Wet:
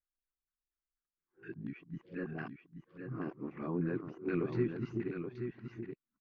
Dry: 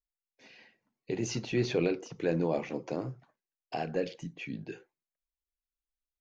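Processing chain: whole clip reversed; band shelf 660 Hz -15.5 dB 1.2 oct; LFO low-pass saw down 4.2 Hz 720–1700 Hz; echo 0.828 s -7 dB; gain -3.5 dB

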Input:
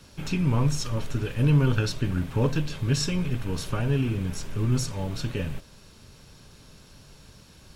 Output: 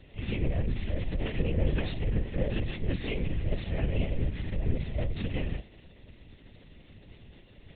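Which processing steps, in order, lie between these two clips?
minimum comb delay 1.4 ms; elliptic band-stop 700–1700 Hz; bell 220 Hz -4.5 dB 2.7 oct; limiter -23 dBFS, peak gain reduction 7.5 dB; air absorption 240 m; on a send: reverse echo 31 ms -8 dB; on the sum: LPC vocoder at 8 kHz whisper; gain +2.5 dB

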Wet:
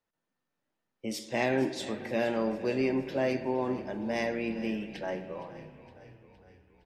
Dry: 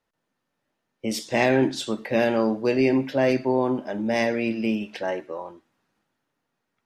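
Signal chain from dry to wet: frequency-shifting echo 0.464 s, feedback 58%, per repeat -33 Hz, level -16 dB; on a send at -11 dB: reverb RT60 2.4 s, pre-delay 32 ms; on the sum: gain -8 dB

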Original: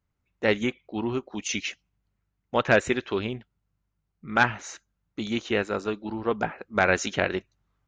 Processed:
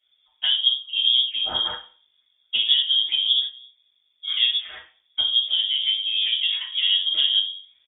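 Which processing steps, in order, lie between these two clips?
bell 210 Hz +10.5 dB 1.1 oct; treble ducked by the level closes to 430 Hz, closed at -19 dBFS; comb 7 ms, depth 71%; compressor, threshold -23 dBFS, peak gain reduction 8 dB; reverb RT60 0.40 s, pre-delay 4 ms, DRR -7 dB; inverted band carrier 3500 Hz; gain -2 dB

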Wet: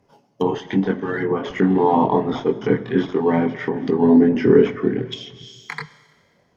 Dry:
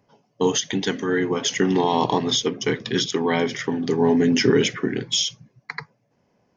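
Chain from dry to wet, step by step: chorus voices 4, 0.45 Hz, delay 23 ms, depth 2.6 ms; in parallel at -9 dB: decimation with a swept rate 8×, swing 100% 1.3 Hz; on the sum: Schroeder reverb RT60 1.6 s, combs from 30 ms, DRR 16 dB; treble ducked by the level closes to 1300 Hz, closed at -22 dBFS; gain +4 dB

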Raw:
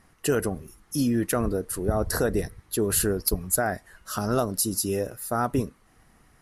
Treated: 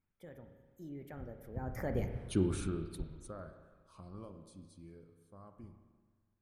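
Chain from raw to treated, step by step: Doppler pass-by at 2.2, 58 m/s, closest 5 m; tone controls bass +7 dB, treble -12 dB; spring tank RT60 1.5 s, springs 31/42 ms, chirp 20 ms, DRR 7 dB; gain -1.5 dB

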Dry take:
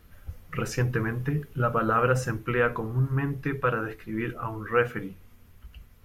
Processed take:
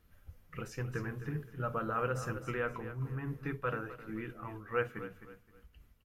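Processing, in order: feedback echo 0.261 s, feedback 31%, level -12 dB; noise-modulated level, depth 55%; gain -8.5 dB

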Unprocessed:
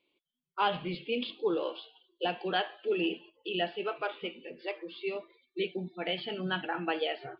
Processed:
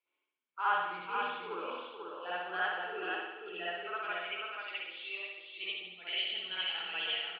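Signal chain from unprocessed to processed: band-pass sweep 1400 Hz -> 3000 Hz, 3.77–4.45; echo 0.488 s -5 dB; spring tank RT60 1 s, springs 56 ms, chirp 30 ms, DRR -9 dB; gain -4 dB

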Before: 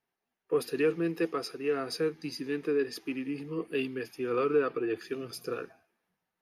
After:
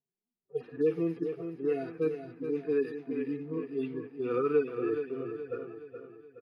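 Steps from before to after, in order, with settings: median-filter separation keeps harmonic; low-pass opened by the level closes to 320 Hz, open at -26.5 dBFS; feedback echo 0.422 s, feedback 46%, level -8.5 dB

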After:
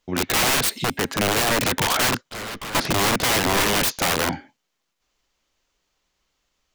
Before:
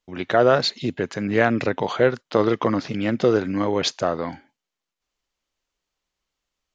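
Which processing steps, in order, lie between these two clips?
self-modulated delay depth 0.4 ms; in parallel at +0.5 dB: limiter -12 dBFS, peak gain reduction 8.5 dB; 0.6–1.47 on the sum: resonator 270 Hz, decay 0.93 s, mix 30%; wrapped overs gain 17 dB; 2.29–2.75 tube stage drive 33 dB, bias 0.7; gain +2.5 dB

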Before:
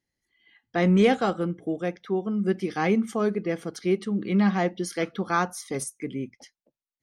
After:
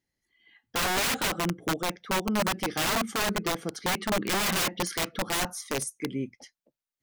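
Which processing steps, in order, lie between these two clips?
3.93–5.01 bell 1800 Hz +7.5 dB 1.8 oct; wrapped overs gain 21.5 dB

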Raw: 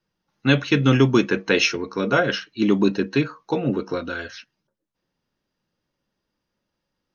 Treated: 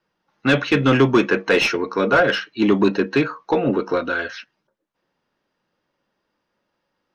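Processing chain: overdrive pedal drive 17 dB, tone 1400 Hz, clips at -3.5 dBFS

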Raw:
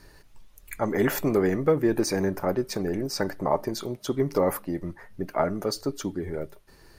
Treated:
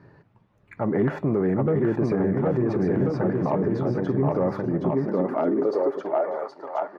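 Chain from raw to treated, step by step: LPF 1400 Hz 12 dB/oct; soft clip -11.5 dBFS, distortion -24 dB; on a send: bouncing-ball echo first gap 0.77 s, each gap 0.8×, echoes 5; on the sum: high-pass sweep 130 Hz -> 780 Hz, 4.7–6.44; limiter -16.5 dBFS, peak gain reduction 7.5 dB; gain +2.5 dB

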